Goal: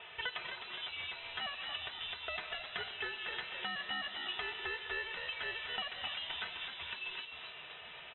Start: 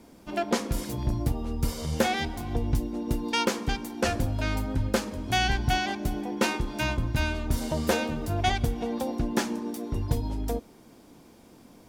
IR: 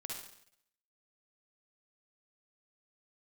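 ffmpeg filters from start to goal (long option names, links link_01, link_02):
-filter_complex "[0:a]highpass=1000,highshelf=frequency=2300:gain=8,aecho=1:1:5.3:0.96,alimiter=limit=-18.5dB:level=0:latency=1:release=30,acompressor=threshold=-46dB:ratio=5,aeval=exprs='0.0562*(cos(1*acos(clip(val(0)/0.0562,-1,1)))-cos(1*PI/2))+0.00282*(cos(4*acos(clip(val(0)/0.0562,-1,1)))-cos(4*PI/2))+0.00708*(cos(6*acos(clip(val(0)/0.0562,-1,1)))-cos(6*PI/2))':channel_layout=same,asplit=9[link_01][link_02][link_03][link_04][link_05][link_06][link_07][link_08][link_09];[link_02]adelay=379,afreqshift=-54,volume=-8.5dB[link_10];[link_03]adelay=758,afreqshift=-108,volume=-12.9dB[link_11];[link_04]adelay=1137,afreqshift=-162,volume=-17.4dB[link_12];[link_05]adelay=1516,afreqshift=-216,volume=-21.8dB[link_13];[link_06]adelay=1895,afreqshift=-270,volume=-26.2dB[link_14];[link_07]adelay=2274,afreqshift=-324,volume=-30.7dB[link_15];[link_08]adelay=2653,afreqshift=-378,volume=-35.1dB[link_16];[link_09]adelay=3032,afreqshift=-432,volume=-39.6dB[link_17];[link_01][link_10][link_11][link_12][link_13][link_14][link_15][link_16][link_17]amix=inputs=9:normalize=0,asetrate=64386,aresample=44100,aeval=exprs='0.0282*(cos(1*acos(clip(val(0)/0.0282,-1,1)))-cos(1*PI/2))+0.002*(cos(4*acos(clip(val(0)/0.0282,-1,1)))-cos(4*PI/2))':channel_layout=same,lowpass=frequency=3400:width_type=q:width=0.5098,lowpass=frequency=3400:width_type=q:width=0.6013,lowpass=frequency=3400:width_type=q:width=0.9,lowpass=frequency=3400:width_type=q:width=2.563,afreqshift=-4000,volume=10dB"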